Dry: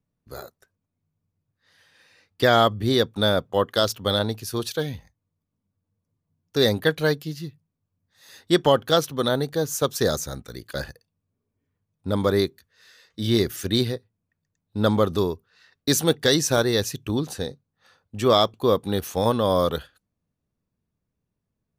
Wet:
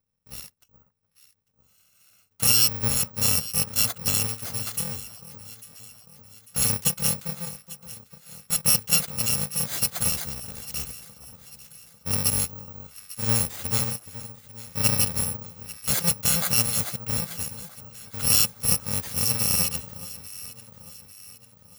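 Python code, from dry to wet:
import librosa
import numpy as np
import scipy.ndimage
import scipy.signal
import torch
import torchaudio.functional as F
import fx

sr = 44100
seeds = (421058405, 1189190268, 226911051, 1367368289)

p1 = fx.bit_reversed(x, sr, seeds[0], block=128)
p2 = p1 + fx.echo_alternate(p1, sr, ms=423, hz=1300.0, feedback_pct=68, wet_db=-13, dry=0)
p3 = (np.kron(scipy.signal.resample_poly(p2, 1, 2), np.eye(2)[0]) * 2)[:len(p2)]
y = p3 * 10.0 ** (-1.5 / 20.0)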